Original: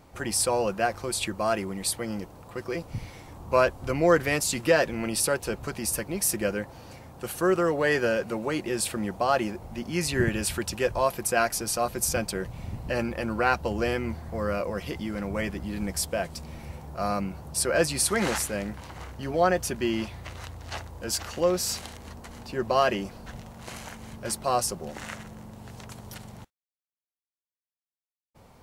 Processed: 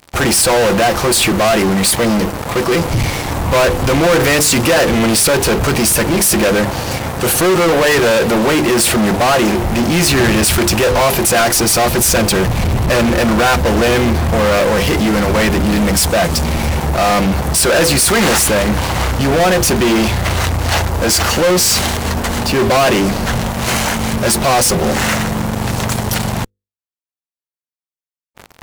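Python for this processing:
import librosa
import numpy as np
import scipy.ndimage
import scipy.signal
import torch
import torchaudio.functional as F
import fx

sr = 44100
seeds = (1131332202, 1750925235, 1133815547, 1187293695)

p1 = fx.hum_notches(x, sr, base_hz=50, count=10)
p2 = fx.fuzz(p1, sr, gain_db=44.0, gate_db=-48.0)
p3 = p1 + F.gain(torch.from_numpy(p2), -5.0).numpy()
p4 = fx.leveller(p3, sr, passes=2)
y = F.gain(torch.from_numpy(p4), -1.0).numpy()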